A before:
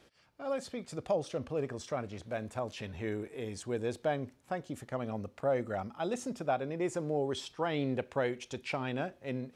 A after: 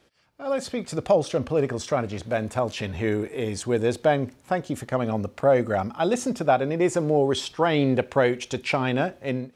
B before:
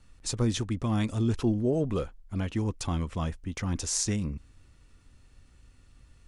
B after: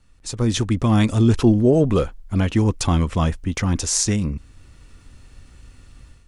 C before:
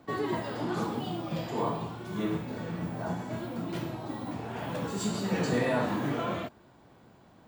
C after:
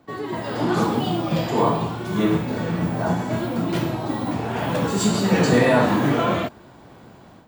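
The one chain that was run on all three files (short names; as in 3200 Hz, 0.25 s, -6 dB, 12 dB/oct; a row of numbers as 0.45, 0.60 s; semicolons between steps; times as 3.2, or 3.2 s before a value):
AGC gain up to 11.5 dB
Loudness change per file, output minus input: +11.5, +10.5, +11.0 LU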